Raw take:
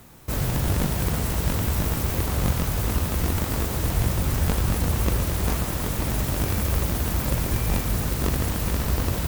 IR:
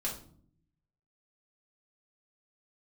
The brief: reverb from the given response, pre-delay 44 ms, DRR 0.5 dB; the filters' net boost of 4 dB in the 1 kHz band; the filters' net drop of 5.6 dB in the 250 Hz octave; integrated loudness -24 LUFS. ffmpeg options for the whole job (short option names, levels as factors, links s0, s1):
-filter_complex "[0:a]equalizer=f=250:t=o:g=-9,equalizer=f=1000:t=o:g=5.5,asplit=2[s0][s1];[1:a]atrim=start_sample=2205,adelay=44[s2];[s1][s2]afir=irnorm=-1:irlink=0,volume=0.668[s3];[s0][s3]amix=inputs=2:normalize=0,volume=0.75"